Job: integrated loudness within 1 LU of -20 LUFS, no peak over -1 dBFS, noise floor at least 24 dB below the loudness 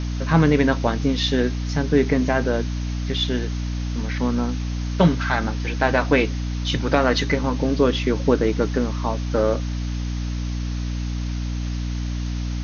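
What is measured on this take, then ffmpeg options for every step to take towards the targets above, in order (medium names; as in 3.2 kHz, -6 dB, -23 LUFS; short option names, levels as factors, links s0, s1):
hum 60 Hz; highest harmonic 300 Hz; hum level -23 dBFS; noise floor -26 dBFS; noise floor target -47 dBFS; loudness -22.5 LUFS; peak level -4.0 dBFS; loudness target -20.0 LUFS
-> -af "bandreject=f=60:t=h:w=4,bandreject=f=120:t=h:w=4,bandreject=f=180:t=h:w=4,bandreject=f=240:t=h:w=4,bandreject=f=300:t=h:w=4"
-af "afftdn=nr=21:nf=-26"
-af "volume=1.33"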